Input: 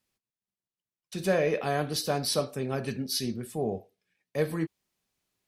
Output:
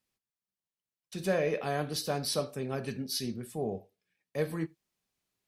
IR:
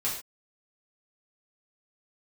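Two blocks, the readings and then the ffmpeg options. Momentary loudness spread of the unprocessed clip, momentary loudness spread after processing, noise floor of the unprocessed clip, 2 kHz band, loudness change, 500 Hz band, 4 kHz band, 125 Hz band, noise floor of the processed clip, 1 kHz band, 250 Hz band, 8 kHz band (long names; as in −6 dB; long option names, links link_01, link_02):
9 LU, 9 LU, below −85 dBFS, −3.5 dB, −3.5 dB, −3.5 dB, −3.5 dB, −3.5 dB, below −85 dBFS, −4.0 dB, −3.5 dB, −3.5 dB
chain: -filter_complex "[0:a]asplit=2[link_01][link_02];[1:a]atrim=start_sample=2205,afade=type=out:start_time=0.14:duration=0.01,atrim=end_sample=6615[link_03];[link_02][link_03]afir=irnorm=-1:irlink=0,volume=-25.5dB[link_04];[link_01][link_04]amix=inputs=2:normalize=0,volume=-4dB"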